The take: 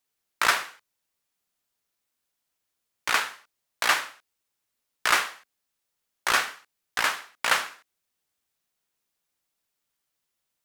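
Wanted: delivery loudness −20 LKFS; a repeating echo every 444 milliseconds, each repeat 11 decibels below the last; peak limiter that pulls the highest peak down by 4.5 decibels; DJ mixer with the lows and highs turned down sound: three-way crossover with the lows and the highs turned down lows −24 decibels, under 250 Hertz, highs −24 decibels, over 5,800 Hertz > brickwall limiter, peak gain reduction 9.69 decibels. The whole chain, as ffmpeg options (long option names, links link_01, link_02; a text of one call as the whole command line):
ffmpeg -i in.wav -filter_complex "[0:a]alimiter=limit=-12dB:level=0:latency=1,acrossover=split=250 5800:gain=0.0631 1 0.0631[link_01][link_02][link_03];[link_01][link_02][link_03]amix=inputs=3:normalize=0,aecho=1:1:444|888|1332:0.282|0.0789|0.0221,volume=15dB,alimiter=limit=-6dB:level=0:latency=1" out.wav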